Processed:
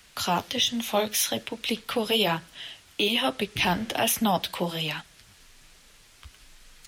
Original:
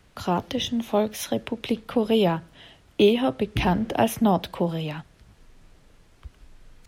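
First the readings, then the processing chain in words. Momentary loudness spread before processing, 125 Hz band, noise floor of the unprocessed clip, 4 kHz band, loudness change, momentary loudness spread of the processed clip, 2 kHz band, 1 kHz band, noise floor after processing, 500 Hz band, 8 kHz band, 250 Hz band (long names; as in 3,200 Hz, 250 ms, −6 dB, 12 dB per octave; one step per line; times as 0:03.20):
9 LU, −6.5 dB, −57 dBFS, +6.5 dB, −1.5 dB, 8 LU, +4.5 dB, −1.0 dB, −56 dBFS, −5.5 dB, +8.5 dB, −6.5 dB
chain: tilt shelving filter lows −9.5 dB, about 1,300 Hz
brickwall limiter −17 dBFS, peak gain reduction 10 dB
flanger 1.2 Hz, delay 3.5 ms, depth 8.5 ms, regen −36%
level +7 dB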